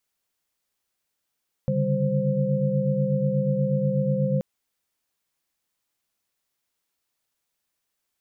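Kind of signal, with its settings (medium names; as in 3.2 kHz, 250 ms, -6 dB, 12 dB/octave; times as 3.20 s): chord C#3/D3/G3/C5 sine, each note -26 dBFS 2.73 s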